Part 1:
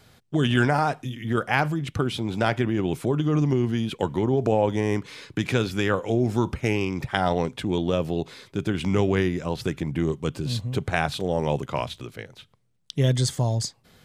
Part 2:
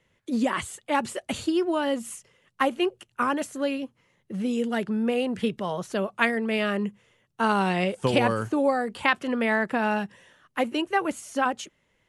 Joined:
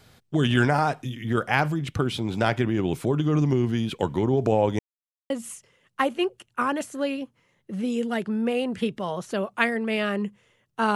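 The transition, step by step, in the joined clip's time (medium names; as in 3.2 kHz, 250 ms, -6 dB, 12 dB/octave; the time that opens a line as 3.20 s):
part 1
4.79–5.30 s: mute
5.30 s: go over to part 2 from 1.91 s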